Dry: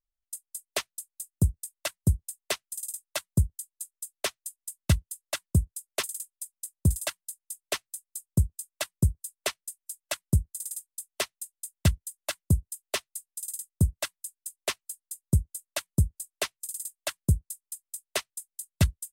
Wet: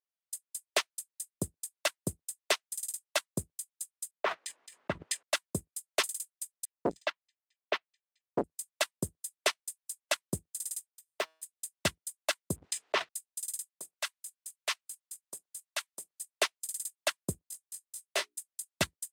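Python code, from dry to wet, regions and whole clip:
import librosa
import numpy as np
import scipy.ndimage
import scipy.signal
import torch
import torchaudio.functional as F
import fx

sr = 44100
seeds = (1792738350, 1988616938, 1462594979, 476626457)

y = fx.chain(x, sr, fx.lowpass(hz=1400.0, slope=12),
    fx.low_shelf(hz=95.0, db=-11.0),
    fx.sustainer(db_per_s=42.0), at=(4.11, 5.23))
y = fx.chain(y, sr, fx.env_lowpass(base_hz=1900.0, full_db=-18.5),
    fx.air_absorb(metres=180.0),
    fx.transformer_sat(knee_hz=400.0), at=(6.65, 8.44))
y = fx.chain(y, sr, fx.high_shelf(hz=2600.0, db=-10.0),
    fx.comb_fb(f0_hz=160.0, decay_s=0.5, harmonics='all', damping=0.0, mix_pct=30),
    fx.resample_bad(factor=2, down='filtered', up='hold'), at=(10.88, 11.43))
y = fx.chain(y, sr, fx.spacing_loss(db_at_10k=29),
    fx.leveller(passes=1),
    fx.sustainer(db_per_s=30.0), at=(12.56, 13.09))
y = fx.chain(y, sr, fx.highpass(hz=840.0, slope=12),
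    fx.transient(attack_db=-5, sustain_db=3), at=(13.7, 16.21))
y = fx.chain(y, sr, fx.hum_notches(base_hz=60, count=7),
    fx.doubler(ms=18.0, db=-6.0),
    fx.detune_double(cents=20), at=(17.49, 18.38))
y = scipy.signal.sosfilt(scipy.signal.butter(2, 370.0, 'highpass', fs=sr, output='sos'), y)
y = fx.high_shelf(y, sr, hz=10000.0, db=-12.0)
y = fx.leveller(y, sr, passes=1)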